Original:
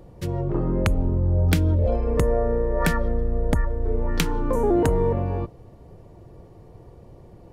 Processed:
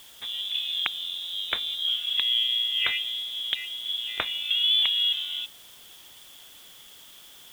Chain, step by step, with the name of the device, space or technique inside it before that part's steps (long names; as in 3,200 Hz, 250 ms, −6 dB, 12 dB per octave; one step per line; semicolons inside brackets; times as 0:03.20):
scrambled radio voice (band-pass filter 340–3,000 Hz; voice inversion scrambler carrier 3,800 Hz; white noise bed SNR 22 dB)